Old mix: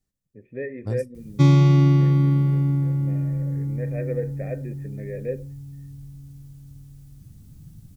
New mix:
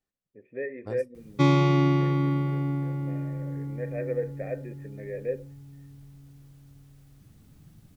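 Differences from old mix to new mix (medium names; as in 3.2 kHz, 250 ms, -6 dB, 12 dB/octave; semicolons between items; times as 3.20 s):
background +4.0 dB; master: add tone controls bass -14 dB, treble -10 dB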